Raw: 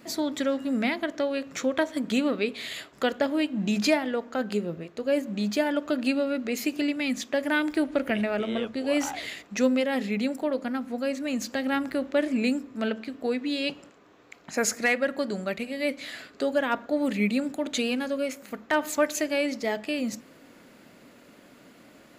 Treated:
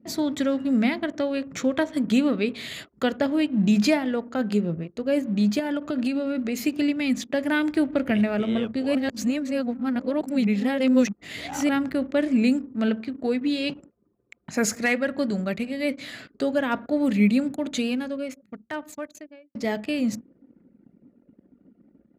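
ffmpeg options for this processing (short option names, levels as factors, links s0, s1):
-filter_complex "[0:a]asettb=1/sr,asplit=3[s0][s1][s2];[s0]atrim=end=5.594[s3];[s1]atrim=start=5.59:end=6.63,asetpts=PTS-STARTPTS,afade=t=in:d=0.004:c=qsin,afade=t=out:st=1.036:d=0.004:c=qsin,acompressor=threshold=0.0562:ratio=6:attack=3.2:release=140:knee=1:detection=peak[s4];[s2]atrim=start=6.626[s5];[s3][s4]acrossfade=d=0.004:c1=hsin:c2=qsin[s6];[s6][s5]acrossfade=d=0.004:c1=qsin:c2=hsin,asettb=1/sr,asplit=3[s7][s8][s9];[s7]atrim=end=12.884[s10];[s8]atrim=start=12.88:end=15.39,asetpts=PTS-STARTPTS,afade=t=in:d=0.004:c=qsin,afade=t=out:st=2.506:d=0.004:c=qsin,aphaser=in_gain=1:out_gain=1:delay=3.9:decay=0.2:speed=1.7:type=triangular[s11];[s9]atrim=start=15.386[s12];[s10][s11]acrossfade=d=0.004:c1=hsin:c2=qsin[s13];[s13][s12]acrossfade=d=0.004:c1=qsin:c2=hsin,asplit=4[s14][s15][s16][s17];[s14]atrim=end=8.952[s18];[s15]atrim=start=8.948:end=11.692,asetpts=PTS-STARTPTS,areverse[s19];[s16]atrim=start=11.688:end=19.55,asetpts=PTS-STARTPTS,afade=t=out:st=5.682:d=2.18[s20];[s17]atrim=start=19.55,asetpts=PTS-STARTPTS,afade=t=in:d=0.004:c=hsin[s21];[s18][s19]acrossfade=d=0.004:c1=hsin:c2=hsin[s22];[s20][s21]concat=n=2:v=0:a=1[s23];[s22][s23]acrossfade=d=0.004:c1=hsin:c2=hsin,anlmdn=0.0398,highpass=69,bass=f=250:g=11,treble=f=4000:g=0"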